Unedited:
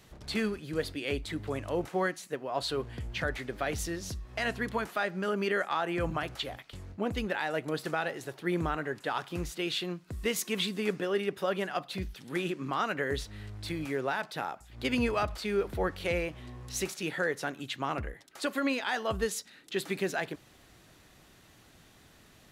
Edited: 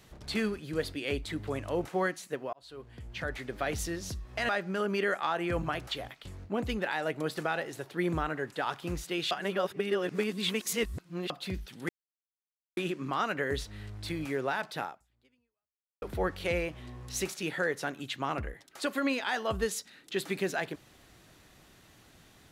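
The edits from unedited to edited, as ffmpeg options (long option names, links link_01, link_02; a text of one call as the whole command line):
ffmpeg -i in.wav -filter_complex "[0:a]asplit=7[link_01][link_02][link_03][link_04][link_05][link_06][link_07];[link_01]atrim=end=2.53,asetpts=PTS-STARTPTS,afade=type=out:start_time=2.526:duration=0.004:curve=hsin[link_08];[link_02]atrim=start=2.53:end=4.492,asetpts=PTS-STARTPTS,afade=type=in:duration=1.08[link_09];[link_03]atrim=start=4.968:end=9.792[link_10];[link_04]atrim=start=9.788:end=11.782,asetpts=PTS-STARTPTS,areverse[link_11];[link_05]atrim=start=11.778:end=12.37,asetpts=PTS-STARTPTS,afade=type=out:start_time=0.588:duration=0.004:curve=hsin,apad=pad_dur=0.88[link_12];[link_06]atrim=start=12.37:end=15.62,asetpts=PTS-STARTPTS,afade=type=in:duration=0.004:curve=hsin,afade=type=out:start_time=2.06:duration=1.19:curve=exp[link_13];[link_07]atrim=start=15.62,asetpts=PTS-STARTPTS,afade=type=in:duration=0.004:curve=hsin[link_14];[link_08][link_09]concat=n=2:v=0:a=1[link_15];[link_15][link_10]acrossfade=duration=0.004:curve1=hsin:curve2=hsin[link_16];[link_16][link_11]acrossfade=duration=0.004:curve1=hsin:curve2=hsin[link_17];[link_12][link_13][link_14]concat=n=3:v=0:a=1[link_18];[link_17][link_18]acrossfade=duration=0.004:curve1=hsin:curve2=hsin" out.wav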